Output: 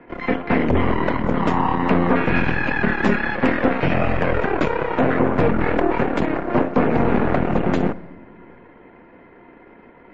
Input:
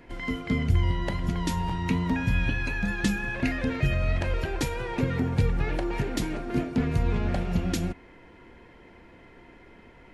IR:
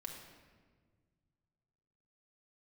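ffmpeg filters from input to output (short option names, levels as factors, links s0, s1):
-filter_complex "[0:a]aeval=exprs='0.282*(cos(1*acos(clip(val(0)/0.282,-1,1)))-cos(1*PI/2))+0.1*(cos(8*acos(clip(val(0)/0.282,-1,1)))-cos(8*PI/2))':c=same,acrossover=split=160 2200:gain=0.224 1 0.0631[s0][s1][s2];[s0][s1][s2]amix=inputs=3:normalize=0,asplit=2[s3][s4];[1:a]atrim=start_sample=2205[s5];[s4][s5]afir=irnorm=-1:irlink=0,volume=0.299[s6];[s3][s6]amix=inputs=2:normalize=0,volume=2" -ar 32000 -c:a libmp3lame -b:a 32k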